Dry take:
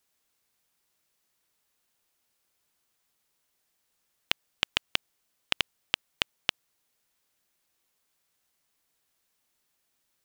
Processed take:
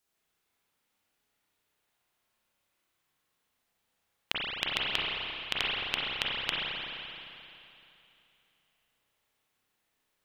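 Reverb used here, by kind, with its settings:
spring reverb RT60 2.9 s, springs 31/43 ms, chirp 25 ms, DRR −6.5 dB
level −5.5 dB

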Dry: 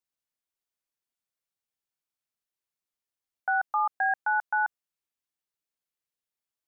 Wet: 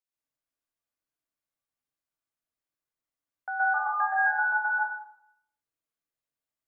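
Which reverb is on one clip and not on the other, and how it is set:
dense smooth reverb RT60 0.72 s, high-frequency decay 0.25×, pre-delay 110 ms, DRR −7 dB
level −7.5 dB

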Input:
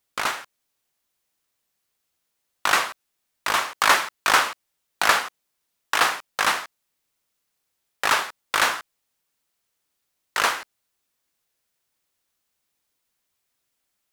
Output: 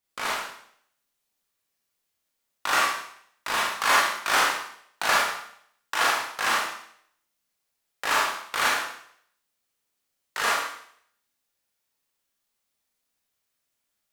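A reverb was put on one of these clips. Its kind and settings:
four-comb reverb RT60 0.64 s, combs from 27 ms, DRR −4.5 dB
level −8 dB

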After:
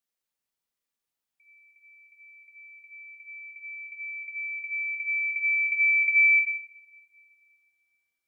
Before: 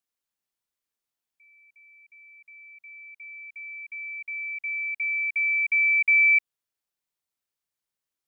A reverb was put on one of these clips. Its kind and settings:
coupled-rooms reverb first 0.77 s, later 2.5 s, from −22 dB, DRR 3 dB
level −1.5 dB

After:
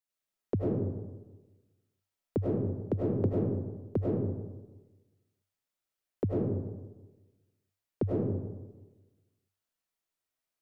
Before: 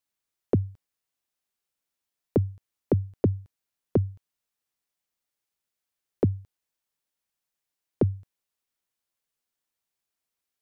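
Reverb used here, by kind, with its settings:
comb and all-pass reverb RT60 1.2 s, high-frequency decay 0.4×, pre-delay 60 ms, DRR −5 dB
level −8 dB

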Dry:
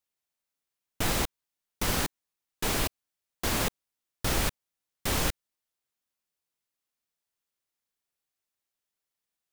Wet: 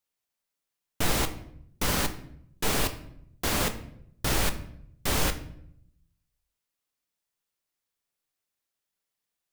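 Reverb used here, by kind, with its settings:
rectangular room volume 140 cubic metres, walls mixed, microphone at 0.36 metres
level +1 dB

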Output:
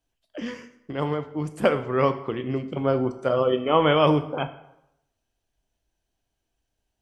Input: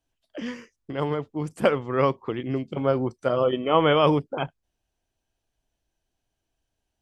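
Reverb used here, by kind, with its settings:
dense smooth reverb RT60 0.82 s, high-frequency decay 0.75×, pre-delay 0 ms, DRR 9 dB

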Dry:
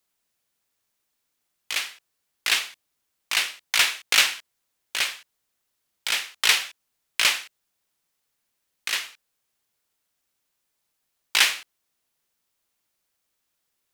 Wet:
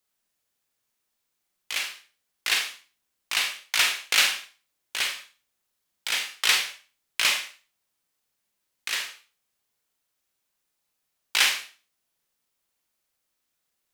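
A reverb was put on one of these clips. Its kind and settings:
four-comb reverb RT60 0.35 s, combs from 30 ms, DRR 4 dB
level −3 dB

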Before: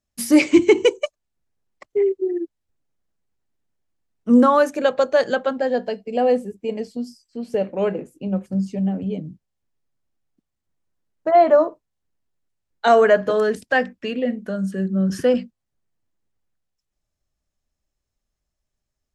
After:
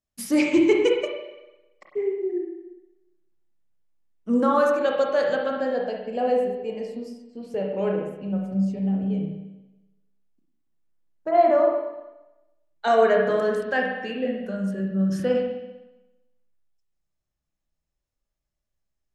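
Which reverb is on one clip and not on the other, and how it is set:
spring reverb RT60 1 s, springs 31/50/56 ms, chirp 20 ms, DRR 0 dB
level −7 dB

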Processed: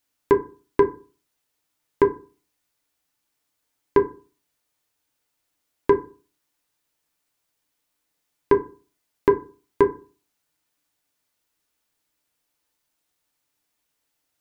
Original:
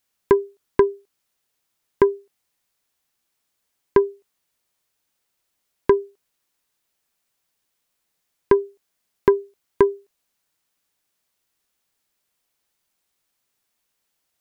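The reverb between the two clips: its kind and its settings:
feedback delay network reverb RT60 0.36 s, low-frequency decay 1.2×, high-frequency decay 0.45×, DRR 4 dB
level −2 dB

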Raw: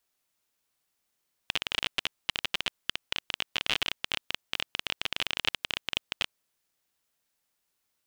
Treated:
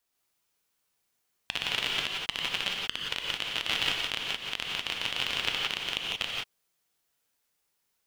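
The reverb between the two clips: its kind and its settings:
reverb whose tail is shaped and stops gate 200 ms rising, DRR −1.5 dB
level −2 dB

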